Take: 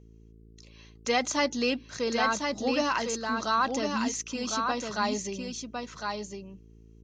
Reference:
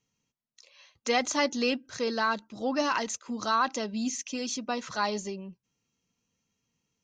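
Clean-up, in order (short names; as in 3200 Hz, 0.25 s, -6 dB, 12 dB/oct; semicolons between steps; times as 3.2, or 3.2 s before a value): de-hum 55.4 Hz, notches 8; inverse comb 1.056 s -4.5 dB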